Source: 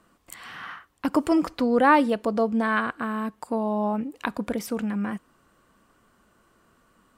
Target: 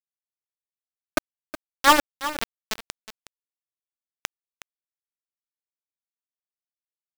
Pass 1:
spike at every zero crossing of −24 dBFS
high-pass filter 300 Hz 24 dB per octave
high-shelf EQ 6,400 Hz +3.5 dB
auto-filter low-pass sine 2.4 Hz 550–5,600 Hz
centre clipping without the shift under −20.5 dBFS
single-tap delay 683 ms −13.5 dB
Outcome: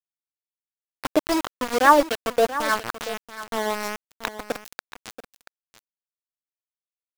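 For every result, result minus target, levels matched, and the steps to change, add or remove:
echo 316 ms late; centre clipping without the shift: distortion −10 dB; spike at every zero crossing: distortion +8 dB
change: single-tap delay 367 ms −13.5 dB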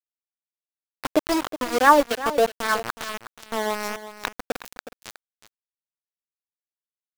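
centre clipping without the shift: distortion −10 dB; spike at every zero crossing: distortion +8 dB
change: centre clipping without the shift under −10 dBFS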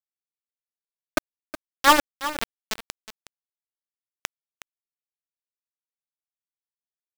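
spike at every zero crossing: distortion +8 dB
change: spike at every zero crossing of −32 dBFS

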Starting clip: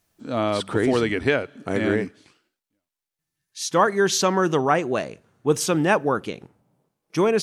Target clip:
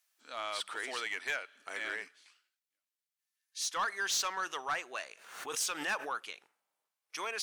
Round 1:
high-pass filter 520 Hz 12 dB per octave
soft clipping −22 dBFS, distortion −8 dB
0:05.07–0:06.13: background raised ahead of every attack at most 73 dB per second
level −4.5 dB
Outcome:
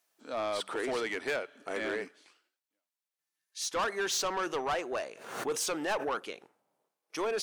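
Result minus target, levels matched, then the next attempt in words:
500 Hz band +9.5 dB
high-pass filter 1,400 Hz 12 dB per octave
soft clipping −22 dBFS, distortion −12 dB
0:05.07–0:06.13: background raised ahead of every attack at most 73 dB per second
level −4.5 dB

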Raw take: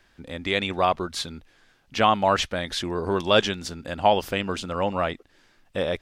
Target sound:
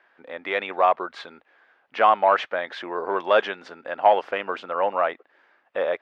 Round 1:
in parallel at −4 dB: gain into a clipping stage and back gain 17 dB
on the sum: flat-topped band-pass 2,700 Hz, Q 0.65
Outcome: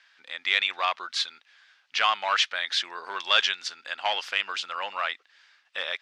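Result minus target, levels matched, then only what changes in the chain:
2,000 Hz band +5.5 dB
change: flat-topped band-pass 1,000 Hz, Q 0.65

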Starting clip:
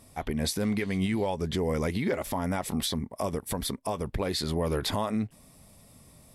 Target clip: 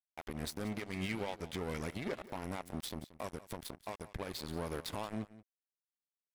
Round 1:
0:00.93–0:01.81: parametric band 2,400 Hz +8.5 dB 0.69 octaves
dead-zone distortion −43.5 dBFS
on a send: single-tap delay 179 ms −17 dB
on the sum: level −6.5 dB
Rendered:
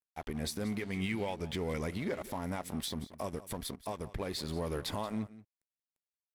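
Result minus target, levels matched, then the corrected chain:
dead-zone distortion: distortion −12 dB
0:00.93–0:01.81: parametric band 2,400 Hz +8.5 dB 0.69 octaves
dead-zone distortion −31.5 dBFS
on a send: single-tap delay 179 ms −17 dB
on the sum: level −6.5 dB

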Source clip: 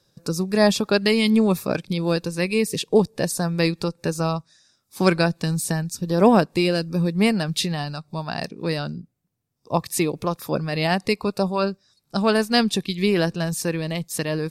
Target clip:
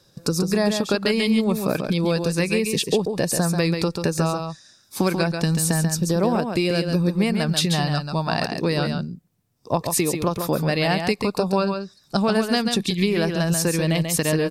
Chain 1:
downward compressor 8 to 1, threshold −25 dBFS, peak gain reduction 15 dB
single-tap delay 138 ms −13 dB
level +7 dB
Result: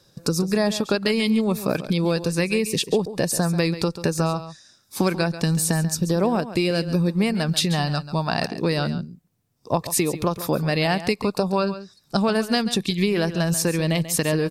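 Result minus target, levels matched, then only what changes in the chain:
echo-to-direct −7 dB
change: single-tap delay 138 ms −6 dB

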